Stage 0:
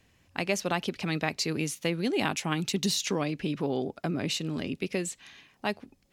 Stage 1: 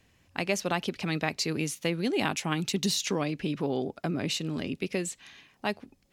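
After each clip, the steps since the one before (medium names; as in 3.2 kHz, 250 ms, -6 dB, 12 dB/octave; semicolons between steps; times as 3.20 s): no audible change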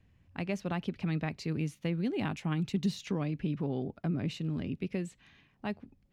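tone controls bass +12 dB, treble -11 dB; trim -8.5 dB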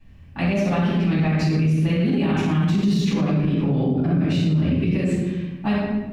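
reverberation RT60 1.1 s, pre-delay 3 ms, DRR -12.5 dB; peak limiter -13 dBFS, peak gain reduction 10 dB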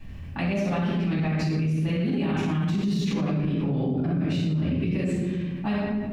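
level flattener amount 50%; trim -6.5 dB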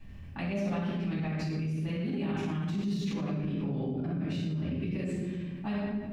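feedback comb 200 Hz, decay 1 s, mix 60%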